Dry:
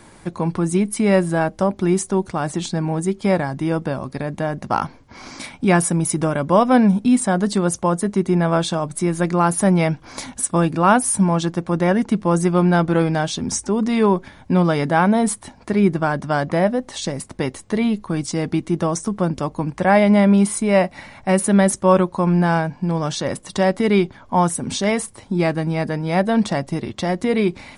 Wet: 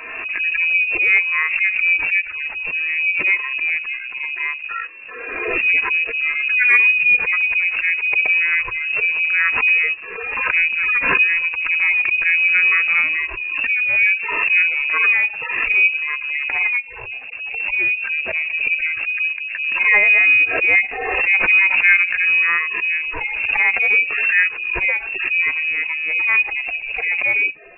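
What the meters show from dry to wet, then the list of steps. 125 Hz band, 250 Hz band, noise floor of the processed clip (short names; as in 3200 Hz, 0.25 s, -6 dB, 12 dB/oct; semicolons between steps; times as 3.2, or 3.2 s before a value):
under -25 dB, under -25 dB, -32 dBFS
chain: median-filter separation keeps harmonic; inverted band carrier 2700 Hz; backwards sustainer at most 34 dB/s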